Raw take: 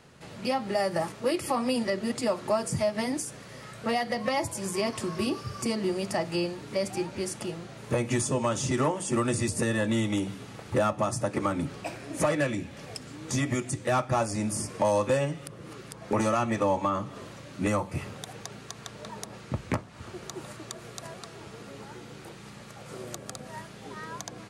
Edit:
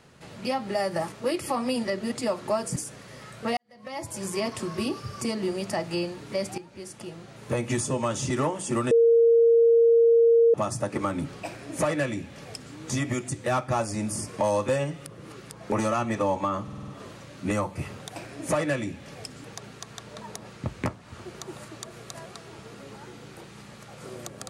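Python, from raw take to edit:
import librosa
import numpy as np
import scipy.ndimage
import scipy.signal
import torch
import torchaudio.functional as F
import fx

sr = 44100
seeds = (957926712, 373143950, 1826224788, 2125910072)

y = fx.edit(x, sr, fx.cut(start_s=2.76, length_s=0.41),
    fx.fade_in_span(start_s=3.98, length_s=0.6, curve='qua'),
    fx.fade_in_from(start_s=6.99, length_s=1.02, floor_db=-14.5),
    fx.bleep(start_s=9.32, length_s=1.63, hz=463.0, db=-14.5),
    fx.duplicate(start_s=11.87, length_s=1.28, to_s=18.32),
    fx.stutter(start_s=17.04, slice_s=0.05, count=6), tone=tone)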